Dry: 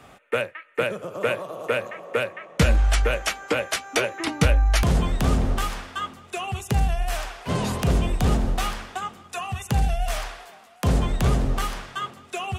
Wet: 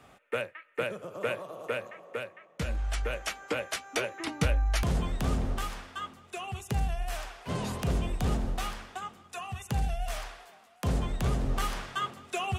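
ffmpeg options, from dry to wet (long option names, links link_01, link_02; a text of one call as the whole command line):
ffmpeg -i in.wav -af "volume=6.5dB,afade=type=out:start_time=1.53:duration=1.03:silence=0.375837,afade=type=in:start_time=2.56:duration=0.83:silence=0.398107,afade=type=in:start_time=11.38:duration=0.44:silence=0.501187" out.wav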